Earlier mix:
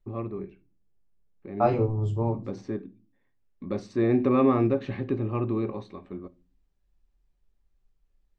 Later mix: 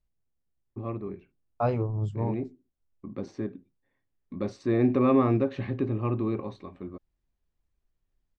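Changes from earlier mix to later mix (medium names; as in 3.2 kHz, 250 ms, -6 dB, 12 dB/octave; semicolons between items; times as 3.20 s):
first voice: entry +0.70 s; reverb: off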